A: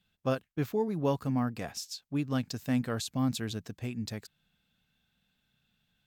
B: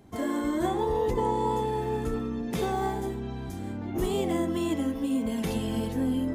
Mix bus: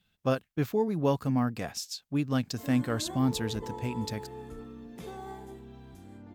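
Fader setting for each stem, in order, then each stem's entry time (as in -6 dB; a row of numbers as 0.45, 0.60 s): +2.5, -13.5 dB; 0.00, 2.45 s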